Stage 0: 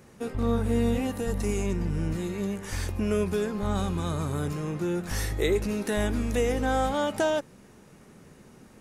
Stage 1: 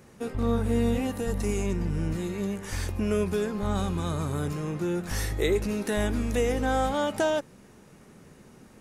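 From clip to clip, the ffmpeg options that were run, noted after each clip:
ffmpeg -i in.wav -af anull out.wav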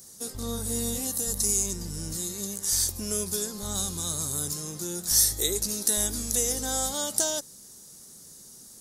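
ffmpeg -i in.wav -af "aexciter=amount=15.3:drive=5.2:freq=3900,volume=-8dB" out.wav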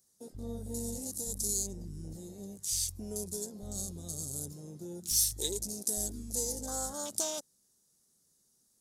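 ffmpeg -i in.wav -af "afwtdn=0.02,volume=-6.5dB" out.wav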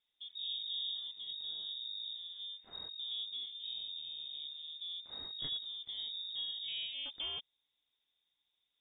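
ffmpeg -i in.wav -af "lowpass=frequency=3200:width_type=q:width=0.5098,lowpass=frequency=3200:width_type=q:width=0.6013,lowpass=frequency=3200:width_type=q:width=0.9,lowpass=frequency=3200:width_type=q:width=2.563,afreqshift=-3800,volume=-1dB" out.wav

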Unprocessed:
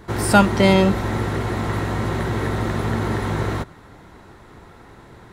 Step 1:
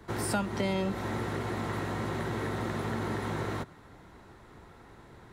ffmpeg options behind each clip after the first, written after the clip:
ffmpeg -i in.wav -filter_complex "[0:a]acrossover=split=89|200[link_01][link_02][link_03];[link_01]acompressor=threshold=-42dB:ratio=4[link_04];[link_02]acompressor=threshold=-29dB:ratio=4[link_05];[link_03]acompressor=threshold=-22dB:ratio=4[link_06];[link_04][link_05][link_06]amix=inputs=3:normalize=0,volume=-8dB" out.wav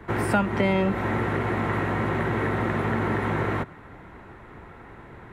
ffmpeg -i in.wav -af "highshelf=frequency=3300:width_type=q:width=1.5:gain=-10.5,volume=7.5dB" out.wav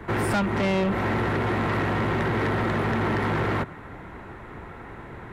ffmpeg -i in.wav -af "asoftclip=type=tanh:threshold=-24.5dB,volume=4.5dB" out.wav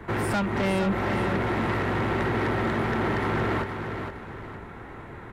ffmpeg -i in.wav -af "aecho=1:1:466|932|1398|1864:0.447|0.152|0.0516|0.0176,volume=-2dB" out.wav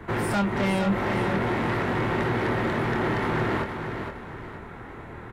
ffmpeg -i in.wav -filter_complex "[0:a]asplit=2[link_01][link_02];[link_02]adelay=25,volume=-7dB[link_03];[link_01][link_03]amix=inputs=2:normalize=0" out.wav

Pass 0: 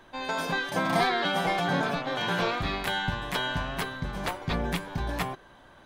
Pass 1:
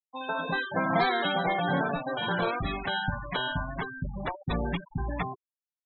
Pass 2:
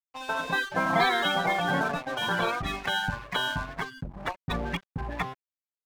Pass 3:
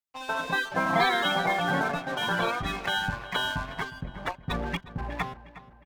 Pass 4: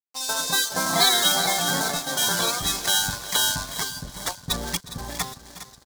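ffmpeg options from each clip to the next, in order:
ffmpeg -i in.wav -af "afftfilt=real='re*gte(hypot(re,im),0.0562)':imag='im*gte(hypot(re,im),0.0562)':win_size=1024:overlap=0.75" out.wav
ffmpeg -i in.wav -filter_complex "[0:a]acrossover=split=340|840[link_01][link_02][link_03];[link_03]acontrast=26[link_04];[link_01][link_02][link_04]amix=inputs=3:normalize=0,aeval=exprs='sgn(val(0))*max(abs(val(0))-0.0119,0)':channel_layout=same" out.wav
ffmpeg -i in.wav -filter_complex "[0:a]asplit=2[link_01][link_02];[link_02]adelay=361,lowpass=frequency=4000:poles=1,volume=-15.5dB,asplit=2[link_03][link_04];[link_04]adelay=361,lowpass=frequency=4000:poles=1,volume=0.49,asplit=2[link_05][link_06];[link_06]adelay=361,lowpass=frequency=4000:poles=1,volume=0.49,asplit=2[link_07][link_08];[link_08]adelay=361,lowpass=frequency=4000:poles=1,volume=0.49[link_09];[link_01][link_03][link_05][link_07][link_09]amix=inputs=5:normalize=0" out.wav
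ffmpeg -i in.wav -af "aecho=1:1:409|818|1227|1636|2045:0.224|0.112|0.056|0.028|0.014,aeval=exprs='sgn(val(0))*max(abs(val(0))-0.00251,0)':channel_layout=same,aexciter=amount=14.9:drive=3:freq=4000" out.wav

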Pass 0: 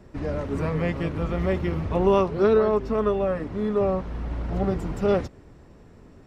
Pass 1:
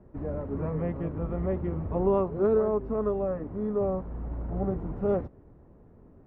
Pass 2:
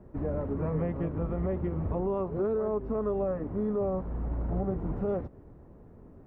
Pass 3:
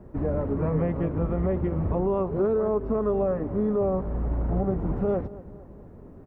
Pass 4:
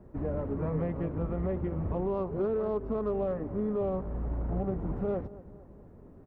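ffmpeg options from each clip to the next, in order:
ffmpeg -i in.wav -af "lowpass=1000,volume=-4.5dB" out.wav
ffmpeg -i in.wav -af "alimiter=level_in=0.5dB:limit=-24dB:level=0:latency=1:release=185,volume=-0.5dB,volume=2.5dB" out.wav
ffmpeg -i in.wav -filter_complex "[0:a]asplit=2[link_01][link_02];[link_02]adelay=229,lowpass=frequency=2000:poles=1,volume=-18dB,asplit=2[link_03][link_04];[link_04]adelay=229,lowpass=frequency=2000:poles=1,volume=0.54,asplit=2[link_05][link_06];[link_06]adelay=229,lowpass=frequency=2000:poles=1,volume=0.54,asplit=2[link_07][link_08];[link_08]adelay=229,lowpass=frequency=2000:poles=1,volume=0.54,asplit=2[link_09][link_10];[link_10]adelay=229,lowpass=frequency=2000:poles=1,volume=0.54[link_11];[link_01][link_03][link_05][link_07][link_09][link_11]amix=inputs=6:normalize=0,volume=5dB" out.wav
ffmpeg -i in.wav -af "aeval=exprs='0.168*(cos(1*acos(clip(val(0)/0.168,-1,1)))-cos(1*PI/2))+0.00188*(cos(8*acos(clip(val(0)/0.168,-1,1)))-cos(8*PI/2))':channel_layout=same,volume=-6dB" out.wav

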